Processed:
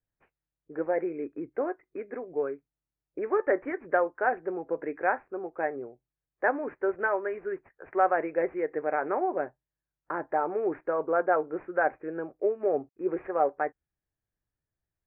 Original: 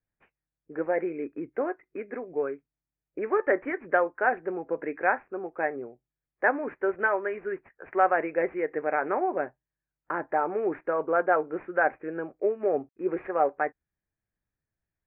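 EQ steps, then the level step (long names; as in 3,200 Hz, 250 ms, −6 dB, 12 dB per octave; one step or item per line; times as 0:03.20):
parametric band 210 Hz −4.5 dB 0.58 octaves
high-shelf EQ 2,400 Hz −12 dB
0.0 dB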